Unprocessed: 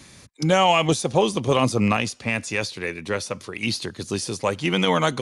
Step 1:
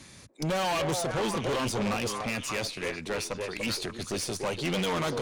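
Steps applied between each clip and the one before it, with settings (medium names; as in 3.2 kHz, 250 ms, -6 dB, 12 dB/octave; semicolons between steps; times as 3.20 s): repeats whose band climbs or falls 290 ms, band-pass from 480 Hz, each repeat 1.4 oct, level -4.5 dB; valve stage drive 26 dB, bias 0.6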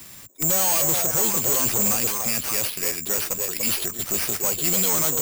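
careless resampling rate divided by 6×, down none, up zero stuff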